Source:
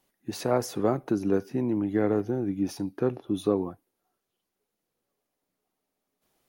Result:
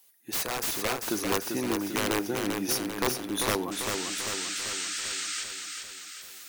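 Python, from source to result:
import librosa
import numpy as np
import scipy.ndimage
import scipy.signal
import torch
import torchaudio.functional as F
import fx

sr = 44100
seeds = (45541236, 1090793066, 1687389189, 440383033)

p1 = fx.tilt_eq(x, sr, slope=4.5)
p2 = (np.mod(10.0 ** (22.0 / 20.0) * p1 + 1.0, 2.0) - 1.0) / 10.0 ** (22.0 / 20.0)
p3 = fx.spec_paint(p2, sr, seeds[0], shape='noise', start_s=3.71, length_s=1.73, low_hz=1200.0, high_hz=8900.0, level_db=-47.0)
p4 = fx.rider(p3, sr, range_db=10, speed_s=0.5)
p5 = p4 + fx.echo_feedback(p4, sr, ms=393, feedback_pct=57, wet_db=-5, dry=0)
y = p5 * 10.0 ** (2.0 / 20.0)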